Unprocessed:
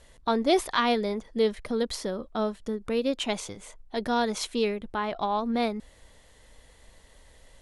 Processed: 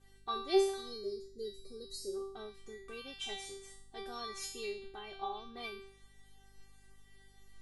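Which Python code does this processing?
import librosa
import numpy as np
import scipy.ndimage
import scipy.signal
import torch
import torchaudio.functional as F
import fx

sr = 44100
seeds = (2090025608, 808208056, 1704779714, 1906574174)

y = fx.spec_box(x, sr, start_s=0.74, length_s=1.4, low_hz=640.0, high_hz=3800.0, gain_db=-22)
y = fx.comb_fb(y, sr, f0_hz=390.0, decay_s=0.59, harmonics='all', damping=0.0, mix_pct=100)
y = fx.add_hum(y, sr, base_hz=50, snr_db=25)
y = y * 10.0 ** (10.0 / 20.0)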